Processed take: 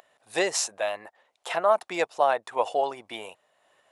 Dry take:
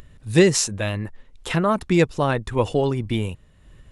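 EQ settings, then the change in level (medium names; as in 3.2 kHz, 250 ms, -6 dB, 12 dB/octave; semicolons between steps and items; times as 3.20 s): resonant high-pass 700 Hz, resonance Q 3.6; -5.5 dB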